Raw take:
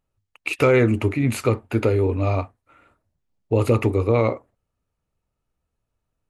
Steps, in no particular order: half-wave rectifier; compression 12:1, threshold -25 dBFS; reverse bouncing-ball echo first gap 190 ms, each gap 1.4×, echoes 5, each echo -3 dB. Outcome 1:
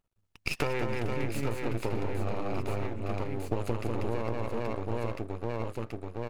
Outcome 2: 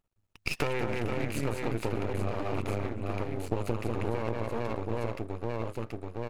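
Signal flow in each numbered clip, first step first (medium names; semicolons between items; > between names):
half-wave rectifier > reverse bouncing-ball echo > compression; reverse bouncing-ball echo > half-wave rectifier > compression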